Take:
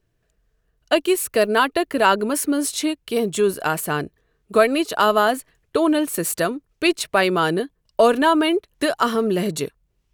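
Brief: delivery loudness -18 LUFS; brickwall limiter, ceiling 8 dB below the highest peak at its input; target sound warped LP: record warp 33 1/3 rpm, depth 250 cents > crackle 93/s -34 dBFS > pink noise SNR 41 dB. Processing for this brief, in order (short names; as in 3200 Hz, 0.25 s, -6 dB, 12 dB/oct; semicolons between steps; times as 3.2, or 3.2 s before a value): limiter -11 dBFS; record warp 33 1/3 rpm, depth 250 cents; crackle 93/s -34 dBFS; pink noise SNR 41 dB; gain +4.5 dB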